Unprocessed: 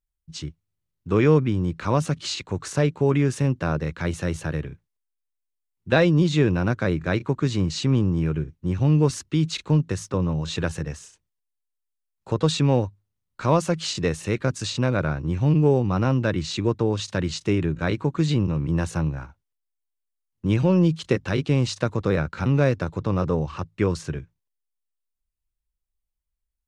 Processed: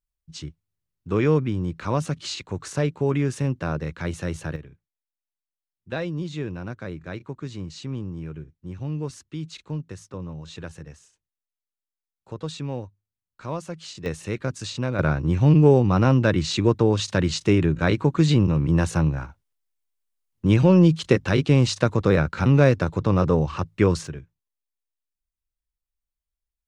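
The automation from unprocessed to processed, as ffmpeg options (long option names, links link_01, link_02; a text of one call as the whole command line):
ffmpeg -i in.wav -af "asetnsamples=nb_out_samples=441:pad=0,asendcmd='4.56 volume volume -11dB;14.06 volume volume -4dB;14.99 volume volume 3.5dB;24.07 volume volume -5dB',volume=-2.5dB" out.wav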